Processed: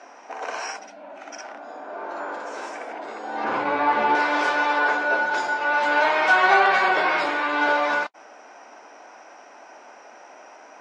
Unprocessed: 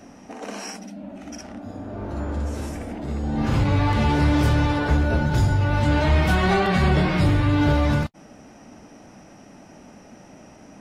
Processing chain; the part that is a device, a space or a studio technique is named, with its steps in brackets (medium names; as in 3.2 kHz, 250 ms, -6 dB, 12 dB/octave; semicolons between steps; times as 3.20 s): 3.44–4.15 s: RIAA curve playback; phone speaker on a table (cabinet simulation 400–7000 Hz, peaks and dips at 730 Hz +5 dB, 1 kHz +9 dB, 1.5 kHz +9 dB, 2.3 kHz +5 dB)